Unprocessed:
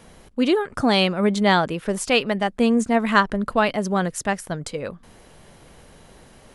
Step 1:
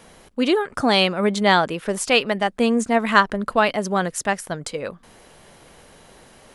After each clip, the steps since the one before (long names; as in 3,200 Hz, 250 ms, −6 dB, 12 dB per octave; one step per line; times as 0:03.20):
low-shelf EQ 230 Hz −8 dB
level +2.5 dB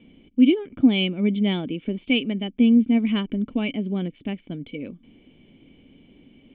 formant resonators in series i
level +8.5 dB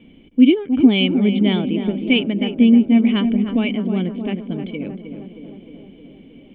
tape delay 311 ms, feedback 76%, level −6.5 dB, low-pass 1,300 Hz
level +4.5 dB